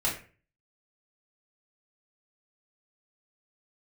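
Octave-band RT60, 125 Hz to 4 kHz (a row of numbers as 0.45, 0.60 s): 0.55, 0.45, 0.40, 0.35, 0.40, 0.30 s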